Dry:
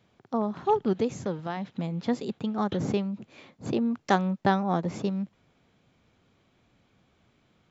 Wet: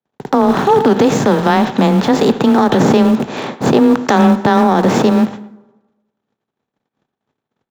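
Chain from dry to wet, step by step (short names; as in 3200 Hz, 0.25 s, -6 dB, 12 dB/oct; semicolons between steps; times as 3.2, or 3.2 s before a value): per-bin compression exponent 0.6; HPF 45 Hz 12 dB/oct; gate -40 dBFS, range -58 dB; speakerphone echo 0.11 s, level -16 dB; in parallel at -12 dB: sample gate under -29 dBFS; on the sum: frequency shift +17 Hz; plate-style reverb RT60 1.1 s, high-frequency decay 0.65×, DRR 16.5 dB; maximiser +16 dB; gain -1 dB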